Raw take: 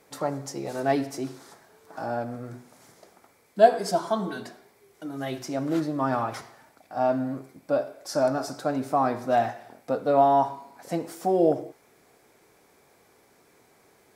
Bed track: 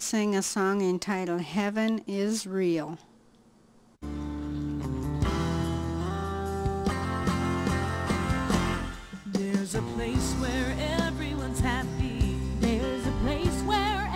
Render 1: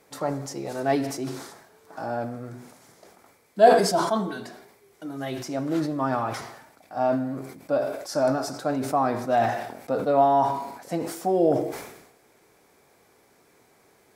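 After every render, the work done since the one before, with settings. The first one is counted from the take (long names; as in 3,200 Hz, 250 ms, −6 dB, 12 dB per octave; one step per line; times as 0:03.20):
level that may fall only so fast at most 63 dB per second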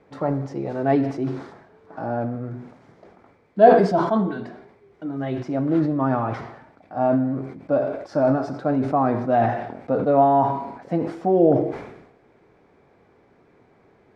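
low-pass filter 2,500 Hz 12 dB per octave
low-shelf EQ 440 Hz +8.5 dB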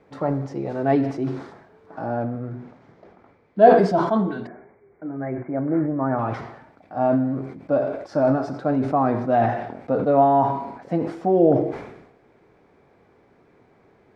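0:02.22–0:03.65: high-frequency loss of the air 84 metres
0:04.47–0:06.19: Chebyshev low-pass with heavy ripple 2,300 Hz, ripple 3 dB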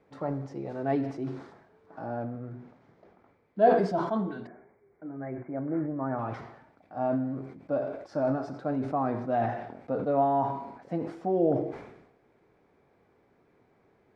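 level −8.5 dB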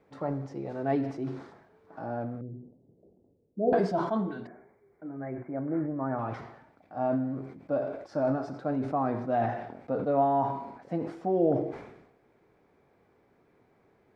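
0:02.41–0:03.73: inverse Chebyshev low-pass filter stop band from 1,700 Hz, stop band 60 dB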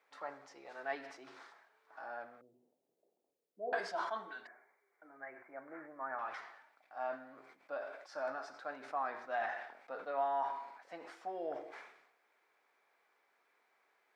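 high-pass filter 1,200 Hz 12 dB per octave
dynamic equaliser 1,700 Hz, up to +4 dB, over −59 dBFS, Q 3.7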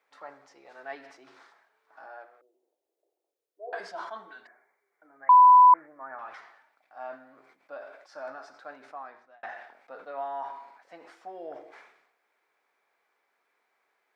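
0:02.06–0:03.80: elliptic high-pass filter 320 Hz
0:05.29–0:05.74: beep over 996 Hz −11 dBFS
0:08.73–0:09.43: fade out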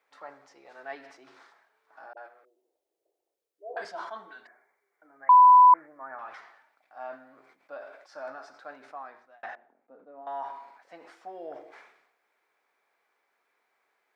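0:02.13–0:03.85: all-pass dispersion highs, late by 41 ms, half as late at 420 Hz
0:09.55–0:10.27: resonant band-pass 250 Hz, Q 1.6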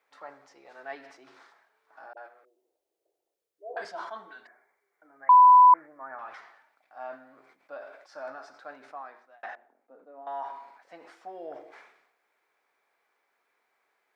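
0:09.01–0:10.52: high-pass filter 240 Hz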